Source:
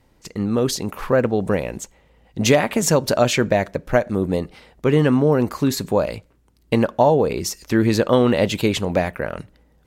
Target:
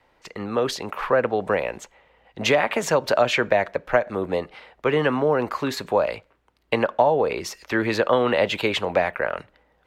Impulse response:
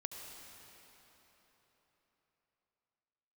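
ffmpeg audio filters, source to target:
-filter_complex "[0:a]acrossover=split=330[s0][s1];[s1]acompressor=threshold=0.141:ratio=6[s2];[s0][s2]amix=inputs=2:normalize=0,acrossover=split=490 3600:gain=0.158 1 0.158[s3][s4][s5];[s3][s4][s5]amix=inputs=3:normalize=0,volume=1.68"

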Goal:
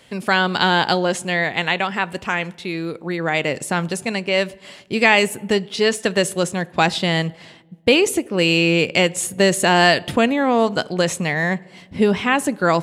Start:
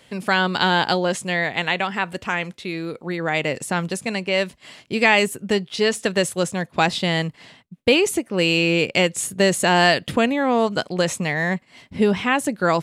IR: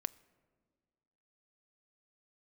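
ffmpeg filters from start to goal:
-filter_complex "[0:a]asplit=2[s0][s1];[1:a]atrim=start_sample=2205,asetrate=61740,aresample=44100[s2];[s1][s2]afir=irnorm=-1:irlink=0,volume=6.31[s3];[s0][s3]amix=inputs=2:normalize=0,volume=0.251"

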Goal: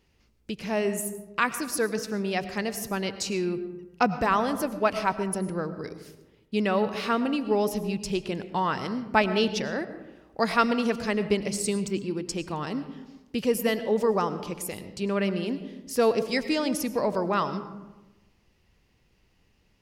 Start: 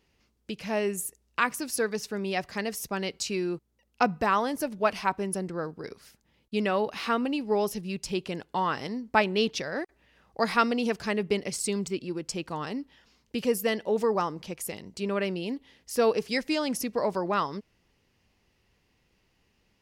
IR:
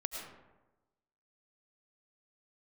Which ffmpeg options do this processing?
-filter_complex "[0:a]asplit=2[s0][s1];[1:a]atrim=start_sample=2205,lowshelf=f=240:g=12[s2];[s1][s2]afir=irnorm=-1:irlink=0,volume=0.447[s3];[s0][s3]amix=inputs=2:normalize=0,volume=0.794"

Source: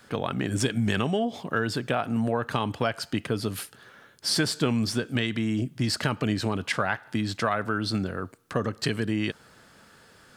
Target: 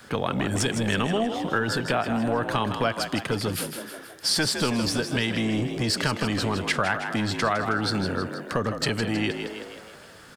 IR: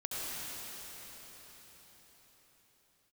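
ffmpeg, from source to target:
-filter_complex "[0:a]acrossover=split=460|3200[s0][s1][s2];[s0]asoftclip=type=hard:threshold=0.0422[s3];[s3][s1][s2]amix=inputs=3:normalize=0,asplit=7[s4][s5][s6][s7][s8][s9][s10];[s5]adelay=159,afreqshift=56,volume=0.355[s11];[s6]adelay=318,afreqshift=112,volume=0.188[s12];[s7]adelay=477,afreqshift=168,volume=0.1[s13];[s8]adelay=636,afreqshift=224,volume=0.0531[s14];[s9]adelay=795,afreqshift=280,volume=0.0279[s15];[s10]adelay=954,afreqshift=336,volume=0.0148[s16];[s4][s11][s12][s13][s14][s15][s16]amix=inputs=7:normalize=0,acompressor=threshold=0.0224:ratio=1.5,volume=2"

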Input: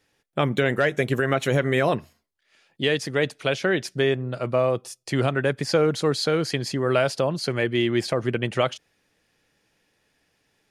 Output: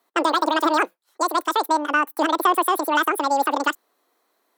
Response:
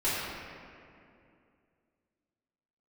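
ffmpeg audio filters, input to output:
-af "highpass=f=120:w=0.5412,highpass=f=120:w=1.3066,equalizer=f=2400:w=0.84:g=-12.5,asetrate=103194,aresample=44100,volume=1.58"

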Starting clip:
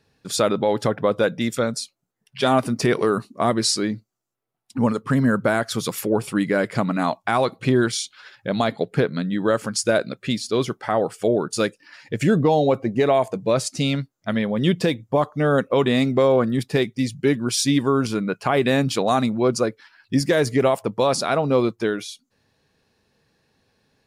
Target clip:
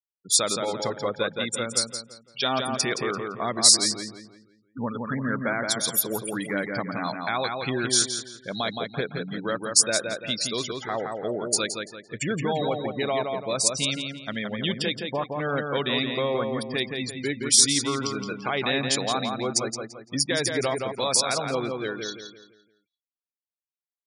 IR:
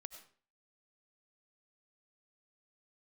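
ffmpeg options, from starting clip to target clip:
-filter_complex "[0:a]afftfilt=real='re*gte(hypot(re,im),0.0355)':imag='im*gte(hypot(re,im),0.0355)':win_size=1024:overlap=0.75,crystalizer=i=9:c=0,asplit=2[s0][s1];[s1]adelay=170,lowpass=f=3400:p=1,volume=0.631,asplit=2[s2][s3];[s3]adelay=170,lowpass=f=3400:p=1,volume=0.4,asplit=2[s4][s5];[s5]adelay=170,lowpass=f=3400:p=1,volume=0.4,asplit=2[s6][s7];[s7]adelay=170,lowpass=f=3400:p=1,volume=0.4,asplit=2[s8][s9];[s9]adelay=170,lowpass=f=3400:p=1,volume=0.4[s10];[s2][s4][s6][s8][s10]amix=inputs=5:normalize=0[s11];[s0][s11]amix=inputs=2:normalize=0,volume=0.266"

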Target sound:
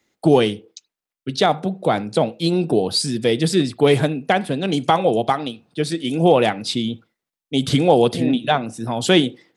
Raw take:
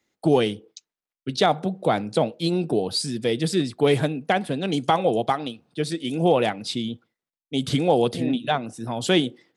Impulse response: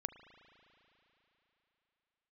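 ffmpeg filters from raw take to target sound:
-filter_complex "[0:a]asplit=2[s0][s1];[1:a]atrim=start_sample=2205,atrim=end_sample=4410[s2];[s1][s2]afir=irnorm=-1:irlink=0,volume=1.58[s3];[s0][s3]amix=inputs=2:normalize=0,dynaudnorm=f=300:g=7:m=3.76,volume=0.891"

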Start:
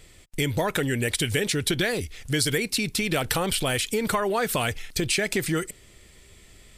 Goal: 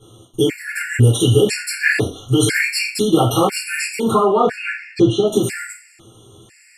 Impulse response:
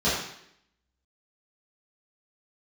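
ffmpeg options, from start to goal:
-filter_complex "[0:a]asettb=1/sr,asplit=3[s0][s1][s2];[s0]atrim=end=1.834[s3];[s1]atrim=start=1.83:end=2.8,asetpts=PTS-STARTPTS,afade=t=in:d=0.004:c=qsin,afade=t=out:st=0.966:d=0.004:c=qsin,equalizer=f=1400:t=o:w=1.8:g=6[s4];[s2]atrim=start=2.796[s5];[s3][s4]acrossfade=d=0.004:c1=hsin:c2=qsin[s6];[s6][s5]acrossfade=d=0.004:c1=qsin:c2=hsin,asettb=1/sr,asplit=3[s7][s8][s9];[s7]atrim=end=4.104[s10];[s8]atrim=start=4.1:end=5.27,asetpts=PTS-STARTPTS,afade=t=in:d=0.004:c=qsin,afade=t=out:st=1.166:d=0.004:c=qsin,lowpass=3200[s11];[s9]atrim=start=5.266[s12];[s10][s11]acrossfade=d=0.004:c1=hsin:c2=qsin[s13];[s13][s12]acrossfade=d=0.004:c1=qsin:c2=hsin[s14];[1:a]atrim=start_sample=2205,asetrate=79380,aresample=44100[s15];[s14][s15]afir=irnorm=-1:irlink=0,afftfilt=real='re*gt(sin(2*PI*1*pts/sr)*(1-2*mod(floor(b*sr/1024/1400),2)),0)':imag='im*gt(sin(2*PI*1*pts/sr)*(1-2*mod(floor(b*sr/1024/1400),2)),0)':win_size=1024:overlap=0.75,volume=0.841"

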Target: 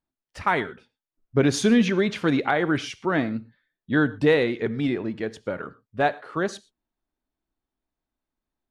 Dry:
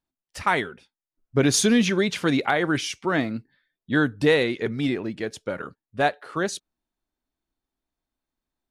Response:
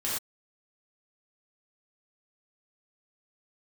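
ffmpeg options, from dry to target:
-filter_complex "[0:a]lowpass=f=2400:p=1,asplit=2[s0][s1];[1:a]atrim=start_sample=2205[s2];[s1][s2]afir=irnorm=-1:irlink=0,volume=0.075[s3];[s0][s3]amix=inputs=2:normalize=0"

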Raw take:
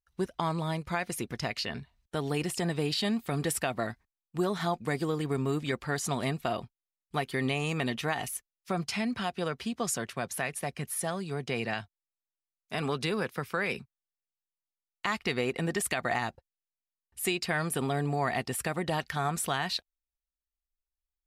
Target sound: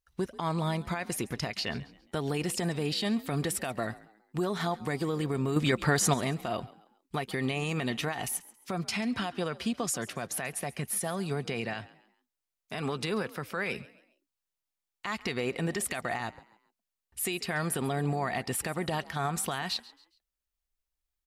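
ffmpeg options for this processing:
-filter_complex "[0:a]alimiter=level_in=1.19:limit=0.0631:level=0:latency=1:release=168,volume=0.841,asettb=1/sr,asplit=3[s0][s1][s2];[s0]atrim=end=5.564[s3];[s1]atrim=start=5.56:end=6.14,asetpts=PTS-STARTPTS,afade=t=in:d=0.004:c=qsin,afade=t=out:st=0.576:d=0.004:c=qsin,acontrast=71[s4];[s2]atrim=start=6.136[s5];[s3][s4]acrossfade=d=0.004:c1=hsin:c2=qsin[s6];[s6][s5]acrossfade=d=0.004:c1=qsin:c2=hsin,asplit=4[s7][s8][s9][s10];[s8]adelay=137,afreqshift=49,volume=0.1[s11];[s9]adelay=274,afreqshift=98,volume=0.0359[s12];[s10]adelay=411,afreqshift=147,volume=0.013[s13];[s7][s11][s12][s13]amix=inputs=4:normalize=0,volume=1.58"

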